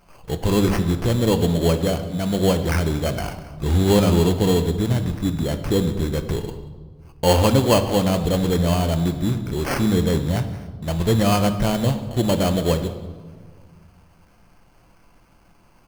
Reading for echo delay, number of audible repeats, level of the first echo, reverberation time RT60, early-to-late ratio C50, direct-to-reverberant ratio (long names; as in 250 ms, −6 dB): 183 ms, 1, −23.0 dB, 1.6 s, 10.5 dB, 8.0 dB